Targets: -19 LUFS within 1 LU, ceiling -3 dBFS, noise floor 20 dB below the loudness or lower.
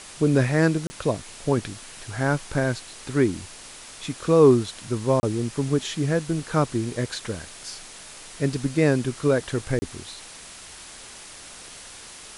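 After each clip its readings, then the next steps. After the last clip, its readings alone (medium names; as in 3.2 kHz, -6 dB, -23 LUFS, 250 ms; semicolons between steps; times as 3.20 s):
dropouts 3; longest dropout 30 ms; noise floor -43 dBFS; noise floor target -44 dBFS; loudness -24.0 LUFS; peak level -5.0 dBFS; loudness target -19.0 LUFS
-> interpolate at 0.87/5.20/9.79 s, 30 ms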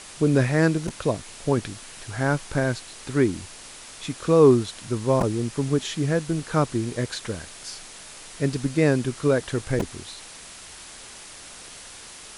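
dropouts 0; noise floor -43 dBFS; noise floor target -44 dBFS
-> noise reduction 6 dB, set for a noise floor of -43 dBFS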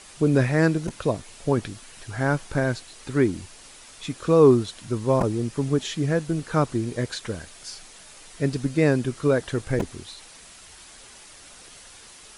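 noise floor -47 dBFS; loudness -24.0 LUFS; peak level -5.0 dBFS; loudness target -19.0 LUFS
-> trim +5 dB; peak limiter -3 dBFS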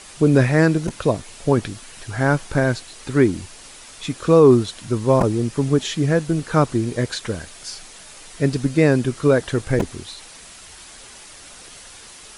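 loudness -19.5 LUFS; peak level -3.0 dBFS; noise floor -42 dBFS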